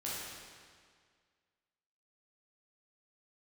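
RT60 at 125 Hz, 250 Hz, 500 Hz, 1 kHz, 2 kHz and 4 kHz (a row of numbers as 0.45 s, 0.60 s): 1.9 s, 1.9 s, 1.9 s, 1.9 s, 1.8 s, 1.7 s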